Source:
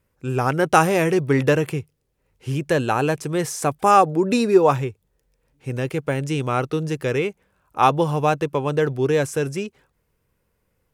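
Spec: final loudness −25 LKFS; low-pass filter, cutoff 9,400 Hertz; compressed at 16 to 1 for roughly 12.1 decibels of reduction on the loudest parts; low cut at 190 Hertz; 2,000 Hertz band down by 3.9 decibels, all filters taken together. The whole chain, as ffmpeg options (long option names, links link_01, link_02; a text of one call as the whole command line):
ffmpeg -i in.wav -af "highpass=190,lowpass=9400,equalizer=frequency=2000:width_type=o:gain=-5.5,acompressor=threshold=-21dB:ratio=16,volume=3dB" out.wav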